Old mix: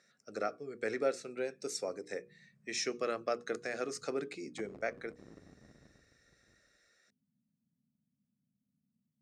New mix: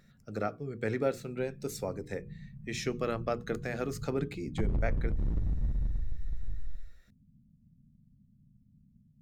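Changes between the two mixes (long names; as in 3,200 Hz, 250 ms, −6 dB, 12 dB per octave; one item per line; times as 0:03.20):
background +5.5 dB
master: remove loudspeaker in its box 380–9,400 Hz, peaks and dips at 910 Hz −8 dB, 3,200 Hz −5 dB, 5,600 Hz +7 dB, 8,700 Hz +4 dB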